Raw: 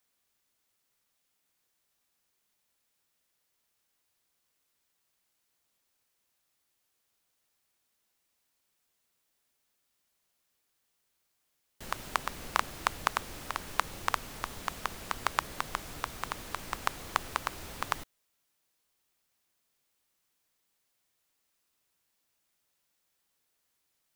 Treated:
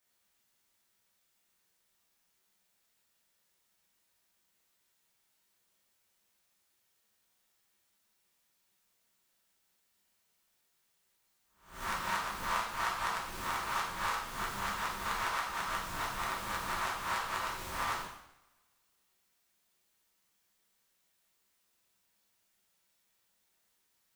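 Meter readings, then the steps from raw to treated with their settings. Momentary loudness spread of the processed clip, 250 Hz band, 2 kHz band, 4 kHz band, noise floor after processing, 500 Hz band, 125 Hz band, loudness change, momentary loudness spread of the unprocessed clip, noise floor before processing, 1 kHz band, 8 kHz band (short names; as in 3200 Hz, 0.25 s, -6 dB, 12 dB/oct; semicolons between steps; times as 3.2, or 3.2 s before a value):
4 LU, -1.0 dB, +0.5 dB, -0.5 dB, -76 dBFS, -1.0 dB, -1.5 dB, 0.0 dB, 7 LU, -78 dBFS, 0.0 dB, -1.0 dB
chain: spectral swells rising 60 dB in 0.48 s; compressor 6:1, threshold -31 dBFS, peak gain reduction 12 dB; two-slope reverb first 0.75 s, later 2 s, from -26 dB, DRR -6.5 dB; gain -6.5 dB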